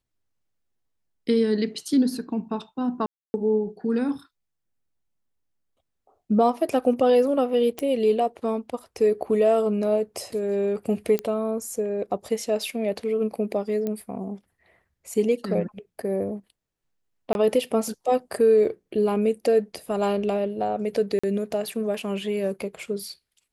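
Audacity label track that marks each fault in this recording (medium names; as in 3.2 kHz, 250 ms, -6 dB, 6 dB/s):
3.060000	3.340000	dropout 280 ms
7.790000	7.790000	pop -14 dBFS
11.190000	11.190000	pop -12 dBFS
13.870000	13.870000	pop -17 dBFS
17.330000	17.350000	dropout 21 ms
21.190000	21.230000	dropout 45 ms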